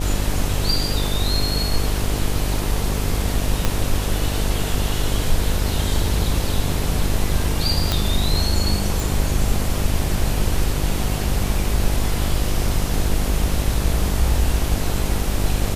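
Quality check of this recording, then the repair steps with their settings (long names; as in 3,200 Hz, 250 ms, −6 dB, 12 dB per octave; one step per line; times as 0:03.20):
mains buzz 50 Hz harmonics 15 −24 dBFS
0:03.65: click −4 dBFS
0:07.92: click
0:09.00: click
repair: click removal
hum removal 50 Hz, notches 15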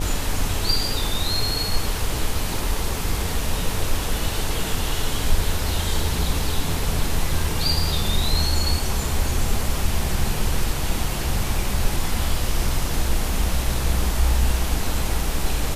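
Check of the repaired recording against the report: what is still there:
0:03.65: click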